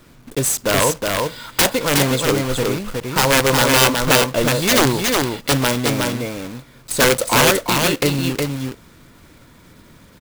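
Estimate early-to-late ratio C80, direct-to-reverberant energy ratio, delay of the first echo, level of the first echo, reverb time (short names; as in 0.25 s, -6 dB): none, none, 0.365 s, -3.5 dB, none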